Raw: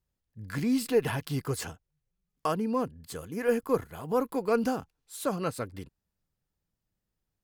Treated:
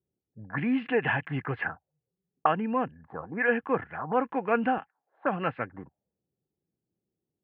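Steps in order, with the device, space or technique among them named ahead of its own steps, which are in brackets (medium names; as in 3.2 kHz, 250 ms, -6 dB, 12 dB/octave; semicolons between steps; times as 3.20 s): envelope filter bass rig (touch-sensitive low-pass 390–2900 Hz up, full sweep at -28.5 dBFS; cabinet simulation 83–2300 Hz, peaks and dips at 93 Hz -7 dB, 430 Hz -4 dB, 790 Hz +8 dB, 1.7 kHz +9 dB); 4.78–5.25 s: frequency weighting A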